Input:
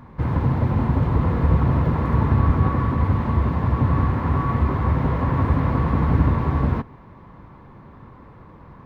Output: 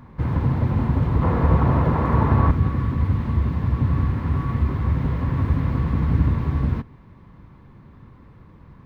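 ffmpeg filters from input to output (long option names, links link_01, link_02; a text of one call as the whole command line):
ffmpeg -i in.wav -af "asetnsamples=nb_out_samples=441:pad=0,asendcmd='1.22 equalizer g 4;2.51 equalizer g -9.5',equalizer=frequency=780:width_type=o:width=2.4:gain=-3.5" out.wav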